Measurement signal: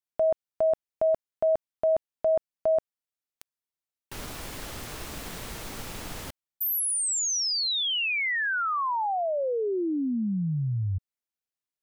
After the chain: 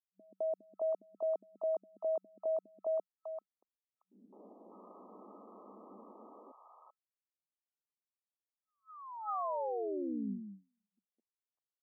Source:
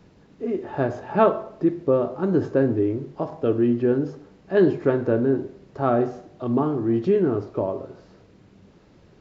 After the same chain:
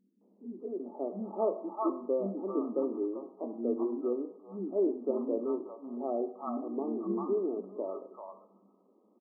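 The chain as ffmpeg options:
-filter_complex "[0:a]acrossover=split=260|800[s0][s1][s2];[s1]adelay=210[s3];[s2]adelay=600[s4];[s0][s3][s4]amix=inputs=3:normalize=0,afftfilt=real='re*between(b*sr/4096,190,1300)':imag='im*between(b*sr/4096,190,1300)':win_size=4096:overlap=0.75,volume=0.376"

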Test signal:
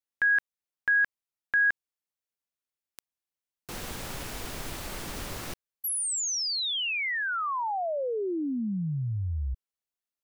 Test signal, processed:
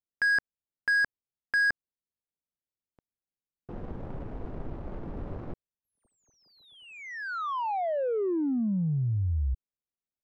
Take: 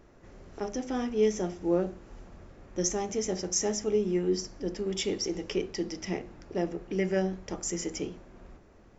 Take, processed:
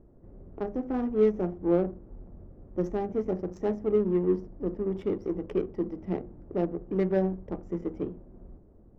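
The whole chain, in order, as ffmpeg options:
-af "adynamicsmooth=sensitivity=1.5:basefreq=540,tiltshelf=f=1500:g=3"

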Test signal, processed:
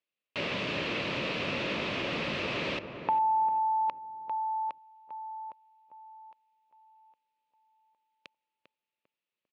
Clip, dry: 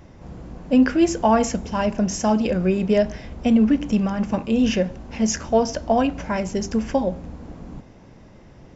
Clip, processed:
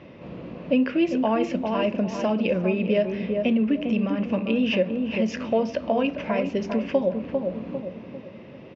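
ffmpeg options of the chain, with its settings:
-filter_complex "[0:a]asplit=2[s0][s1];[s1]adelay=398,lowpass=f=1100:p=1,volume=0.447,asplit=2[s2][s3];[s3]adelay=398,lowpass=f=1100:p=1,volume=0.39,asplit=2[s4][s5];[s5]adelay=398,lowpass=f=1100:p=1,volume=0.39,asplit=2[s6][s7];[s7]adelay=398,lowpass=f=1100:p=1,volume=0.39,asplit=2[s8][s9];[s9]adelay=398,lowpass=f=1100:p=1,volume=0.39[s10];[s2][s4][s6][s8][s10]amix=inputs=5:normalize=0[s11];[s0][s11]amix=inputs=2:normalize=0,acompressor=threshold=0.0355:ratio=2,highpass=170,equalizer=f=560:t=q:w=4:g=5,equalizer=f=790:t=q:w=4:g=-8,equalizer=f=1500:t=q:w=4:g=-5,equalizer=f=2600:t=q:w=4:g=8,lowpass=f=3900:w=0.5412,lowpass=f=3900:w=1.3066,volume=1.58"

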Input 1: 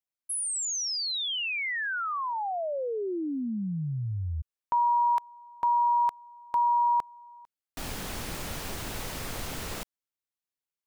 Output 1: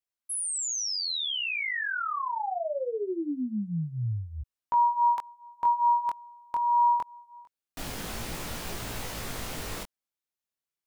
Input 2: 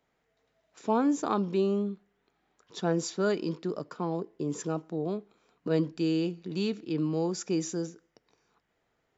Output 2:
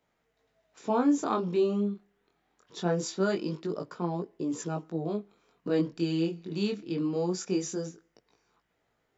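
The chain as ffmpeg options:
-af "flanger=delay=17:depth=7.5:speed=0.23,volume=1.41"

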